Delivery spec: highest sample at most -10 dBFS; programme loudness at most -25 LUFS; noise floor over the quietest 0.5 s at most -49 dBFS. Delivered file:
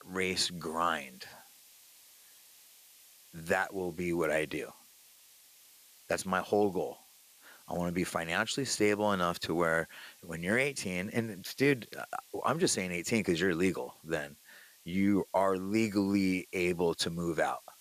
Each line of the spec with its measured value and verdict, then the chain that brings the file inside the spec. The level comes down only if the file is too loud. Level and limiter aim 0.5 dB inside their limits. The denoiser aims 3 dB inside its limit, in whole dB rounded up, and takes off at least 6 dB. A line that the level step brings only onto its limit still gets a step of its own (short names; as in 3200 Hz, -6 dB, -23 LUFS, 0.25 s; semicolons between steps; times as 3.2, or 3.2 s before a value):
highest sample -14.5 dBFS: OK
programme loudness -32.0 LUFS: OK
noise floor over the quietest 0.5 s -59 dBFS: OK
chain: none